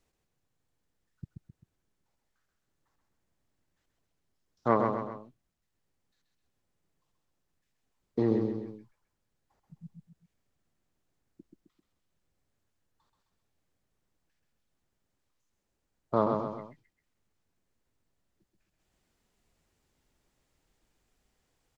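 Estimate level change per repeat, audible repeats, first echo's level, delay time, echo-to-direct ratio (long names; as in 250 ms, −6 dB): −6.5 dB, 3, −4.5 dB, 131 ms, −3.5 dB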